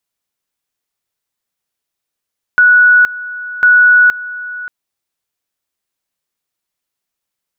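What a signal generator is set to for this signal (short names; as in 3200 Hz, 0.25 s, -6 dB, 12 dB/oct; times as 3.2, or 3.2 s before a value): two-level tone 1470 Hz -4 dBFS, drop 17.5 dB, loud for 0.47 s, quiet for 0.58 s, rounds 2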